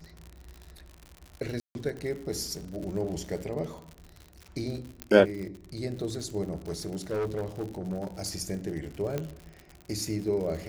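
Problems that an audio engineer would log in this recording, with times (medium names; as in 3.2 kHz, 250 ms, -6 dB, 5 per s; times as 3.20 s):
crackle 87 per s -36 dBFS
1.60–1.75 s: dropout 151 ms
5.02 s: pop -16 dBFS
6.50–8.07 s: clipped -26.5 dBFS
9.18 s: pop -18 dBFS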